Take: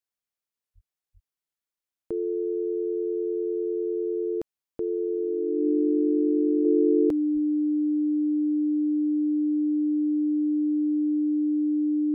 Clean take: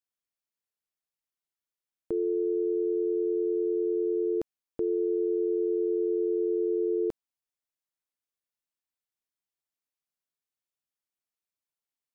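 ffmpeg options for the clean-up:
-filter_complex "[0:a]bandreject=f=300:w=30,asplit=3[s0][s1][s2];[s0]afade=t=out:st=0.74:d=0.02[s3];[s1]highpass=f=140:w=0.5412,highpass=f=140:w=1.3066,afade=t=in:st=0.74:d=0.02,afade=t=out:st=0.86:d=0.02[s4];[s2]afade=t=in:st=0.86:d=0.02[s5];[s3][s4][s5]amix=inputs=3:normalize=0,asplit=3[s6][s7][s8];[s6]afade=t=out:st=1.13:d=0.02[s9];[s7]highpass=f=140:w=0.5412,highpass=f=140:w=1.3066,afade=t=in:st=1.13:d=0.02,afade=t=out:st=1.25:d=0.02[s10];[s8]afade=t=in:st=1.25:d=0.02[s11];[s9][s10][s11]amix=inputs=3:normalize=0,asplit=3[s12][s13][s14];[s12]afade=t=out:st=7.33:d=0.02[s15];[s13]highpass=f=140:w=0.5412,highpass=f=140:w=1.3066,afade=t=in:st=7.33:d=0.02,afade=t=out:st=7.45:d=0.02[s16];[s14]afade=t=in:st=7.45:d=0.02[s17];[s15][s16][s17]amix=inputs=3:normalize=0,asetnsamples=n=441:p=0,asendcmd='6.65 volume volume -5dB',volume=1"

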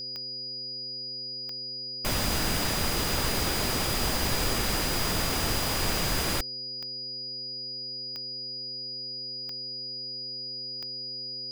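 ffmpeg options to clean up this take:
-af "adeclick=t=4,bandreject=f=127.9:t=h:w=4,bandreject=f=255.8:t=h:w=4,bandreject=f=383.7:t=h:w=4,bandreject=f=511.6:t=h:w=4,bandreject=f=4900:w=30"

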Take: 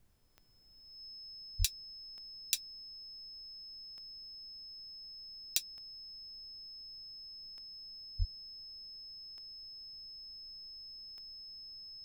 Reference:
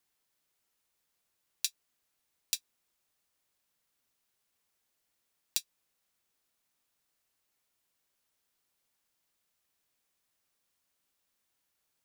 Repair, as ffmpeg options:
-filter_complex "[0:a]adeclick=t=4,bandreject=f=5200:w=30,asplit=3[s0][s1][s2];[s0]afade=t=out:st=1.58:d=0.02[s3];[s1]highpass=f=140:w=0.5412,highpass=f=140:w=1.3066,afade=t=in:st=1.58:d=0.02,afade=t=out:st=1.7:d=0.02[s4];[s2]afade=t=in:st=1.7:d=0.02[s5];[s3][s4][s5]amix=inputs=3:normalize=0,asplit=3[s6][s7][s8];[s6]afade=t=out:st=8.18:d=0.02[s9];[s7]highpass=f=140:w=0.5412,highpass=f=140:w=1.3066,afade=t=in:st=8.18:d=0.02,afade=t=out:st=8.3:d=0.02[s10];[s8]afade=t=in:st=8.3:d=0.02[s11];[s9][s10][s11]amix=inputs=3:normalize=0,afftdn=nr=30:nf=-50"

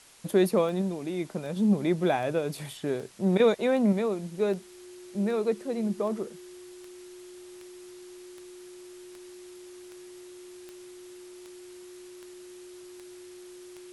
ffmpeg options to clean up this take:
-af "adeclick=t=4,bandreject=f=360:w=30,afftdn=nr=26:nf=-47"

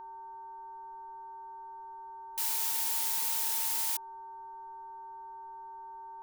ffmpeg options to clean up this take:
-af "bandreject=f=387.6:t=h:w=4,bandreject=f=775.2:t=h:w=4,bandreject=f=1162.8:t=h:w=4,bandreject=f=1550.4:t=h:w=4,bandreject=f=910:w=30,agate=range=0.0891:threshold=0.0126"

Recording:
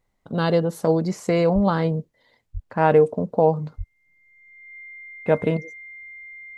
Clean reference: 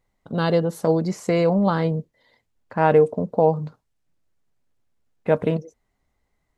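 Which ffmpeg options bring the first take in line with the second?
-filter_complex "[0:a]bandreject=f=2100:w=30,asplit=3[s0][s1][s2];[s0]afade=t=out:st=1.54:d=0.02[s3];[s1]highpass=f=140:w=0.5412,highpass=f=140:w=1.3066,afade=t=in:st=1.54:d=0.02,afade=t=out:st=1.66:d=0.02[s4];[s2]afade=t=in:st=1.66:d=0.02[s5];[s3][s4][s5]amix=inputs=3:normalize=0,asplit=3[s6][s7][s8];[s6]afade=t=out:st=2.53:d=0.02[s9];[s7]highpass=f=140:w=0.5412,highpass=f=140:w=1.3066,afade=t=in:st=2.53:d=0.02,afade=t=out:st=2.65:d=0.02[s10];[s8]afade=t=in:st=2.65:d=0.02[s11];[s9][s10][s11]amix=inputs=3:normalize=0,asplit=3[s12][s13][s14];[s12]afade=t=out:st=3.77:d=0.02[s15];[s13]highpass=f=140:w=0.5412,highpass=f=140:w=1.3066,afade=t=in:st=3.77:d=0.02,afade=t=out:st=3.89:d=0.02[s16];[s14]afade=t=in:st=3.89:d=0.02[s17];[s15][s16][s17]amix=inputs=3:normalize=0"

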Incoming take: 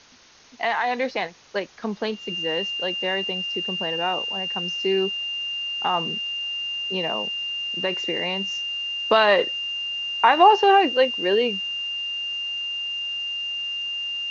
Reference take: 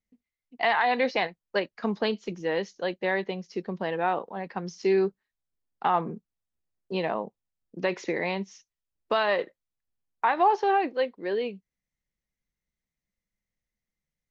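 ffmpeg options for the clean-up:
-af "bandreject=f=2800:w=30,afwtdn=0.004,asetnsamples=n=441:p=0,asendcmd='8.44 volume volume -7.5dB',volume=1"

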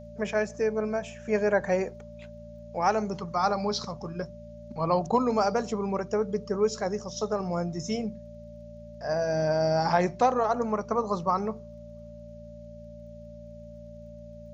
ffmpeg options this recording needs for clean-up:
-af "adeclick=t=4,bandreject=f=57.5:t=h:w=4,bandreject=f=115:t=h:w=4,bandreject=f=172.5:t=h:w=4,bandreject=f=230:t=h:w=4,bandreject=f=590:w=30,agate=range=0.0891:threshold=0.0141"

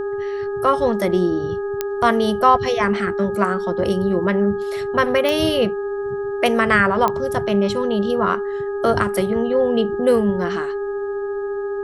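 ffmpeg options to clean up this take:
-af "adeclick=t=4,bandreject=f=414.5:t=h:w=4,bandreject=f=829:t=h:w=4,bandreject=f=1243.5:t=h:w=4,bandreject=f=1658:t=h:w=4,bandreject=f=400:w=30,agate=range=0.0891:threshold=0.141"

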